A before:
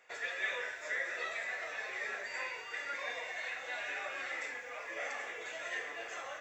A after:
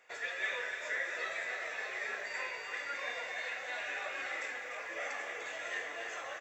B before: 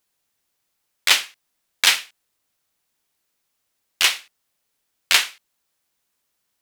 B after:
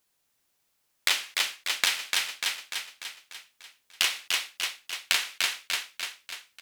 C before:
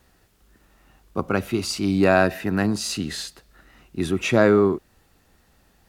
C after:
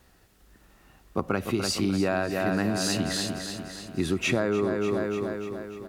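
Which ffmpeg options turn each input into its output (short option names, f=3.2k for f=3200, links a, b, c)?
-af "aecho=1:1:295|590|885|1180|1475|1770|2065:0.398|0.219|0.12|0.0662|0.0364|0.02|0.011,acompressor=threshold=-21dB:ratio=10"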